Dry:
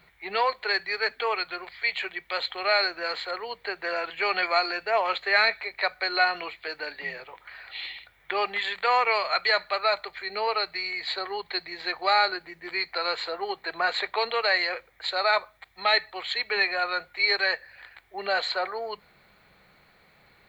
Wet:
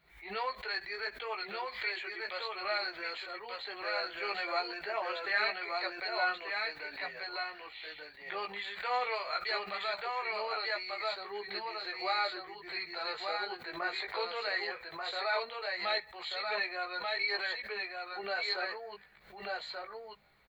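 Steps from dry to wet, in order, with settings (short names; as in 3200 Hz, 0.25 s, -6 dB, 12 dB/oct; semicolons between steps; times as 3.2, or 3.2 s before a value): echo 1.186 s -3 dB; chorus voices 6, 0.16 Hz, delay 17 ms, depth 3.3 ms; backwards sustainer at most 110 dB/s; gain -8 dB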